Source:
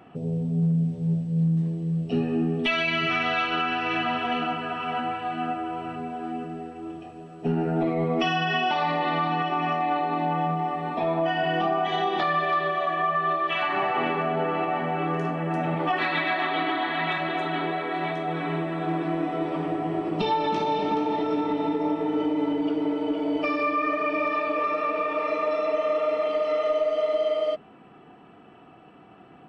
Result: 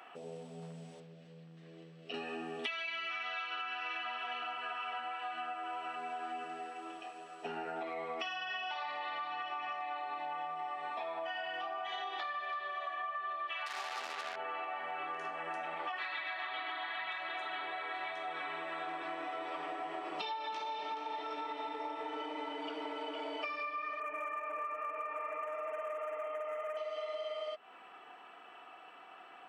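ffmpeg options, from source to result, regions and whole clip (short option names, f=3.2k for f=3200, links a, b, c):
-filter_complex "[0:a]asettb=1/sr,asplit=3[a][b][c];[a]atrim=end=1.004[d];[b]atrim=start=1:end=2.14,asetpts=PTS-STARTPTS,afade=t=in:d=0.004:c=qsin,afade=t=out:st=1.136:d=0.004:c=qsin,lowpass=4k,equalizer=f=900:t=o:w=0.42:g=-14.5,acompressor=threshold=-29dB:ratio=2.5:attack=3.2:release=140:knee=1:detection=peak[e];[c]atrim=start=2.136[f];[d][e]acrossfade=d=0.004:c1=hsin:c2=qsin[g];[g][f]acrossfade=d=0.004:c1=qsin:c2=hsin,asettb=1/sr,asplit=3[h][i][j];[h]atrim=end=13.664[k];[i]atrim=start=13.66:end=14.36,asetpts=PTS-STARTPTS,afade=t=in:d=0.004:c=qsin,afade=t=out:st=0.696:d=0.004:c=qsin,lowpass=2.3k,acrusher=bits=3:mix=0:aa=0.5[l];[j]atrim=start=14.356[m];[k][l]acrossfade=d=0.004:c1=hsin:c2=qsin[n];[n][m]acrossfade=d=0.004:c1=qsin:c2=hsin,asettb=1/sr,asplit=3[o][p][q];[o]atrim=end=24.004[r];[p]atrim=start=24:end=26.77,asetpts=PTS-STARTPTS,afade=t=in:d=0.004:c=qsin,afade=t=out:st=2.766:d=0.004:c=qsin,highshelf=f=3.4k:g=-9,asoftclip=type=hard:threshold=-20.5dB,asuperstop=centerf=4300:order=4:qfactor=0.89[s];[q]atrim=start=26.766[t];[r][s]acrossfade=d=0.004:c1=hsin:c2=qsin[u];[u][t]acrossfade=d=0.004:c1=qsin:c2=hsin,highpass=930,acompressor=threshold=-40dB:ratio=10,volume=3dB"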